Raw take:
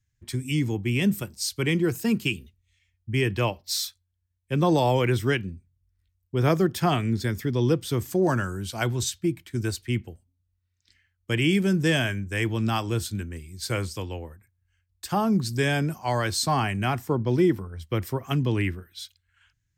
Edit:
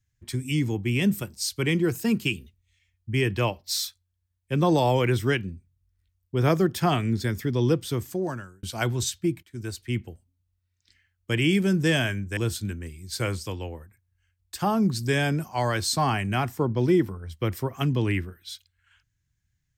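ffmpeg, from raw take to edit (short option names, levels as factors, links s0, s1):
-filter_complex "[0:a]asplit=4[s0][s1][s2][s3];[s0]atrim=end=8.63,asetpts=PTS-STARTPTS,afade=t=out:st=7.8:d=0.83[s4];[s1]atrim=start=8.63:end=9.43,asetpts=PTS-STARTPTS,afade=t=in:d=0.004:c=hsin,afade=t=out:st=0.796:d=0.004:c=hsin:silence=0.211349[s5];[s2]atrim=start=9.43:end=12.372,asetpts=PTS-STARTPTS,afade=t=in:d=0.63:silence=0.211349[s6];[s3]atrim=start=12.868[s7];[s4][s5][s6]concat=n=3:v=0:a=1[s8];[s8][s7]acrossfade=d=0.004:c1=hsin:c2=hsin"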